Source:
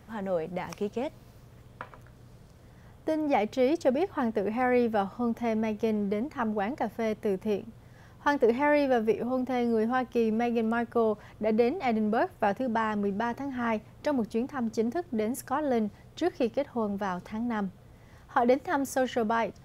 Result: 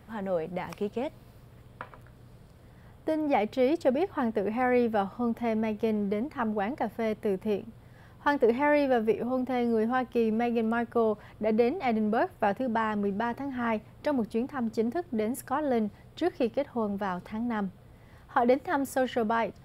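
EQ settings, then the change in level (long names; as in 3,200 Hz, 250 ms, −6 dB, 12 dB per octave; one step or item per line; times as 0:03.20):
parametric band 6,200 Hz −11 dB 0.31 octaves
0.0 dB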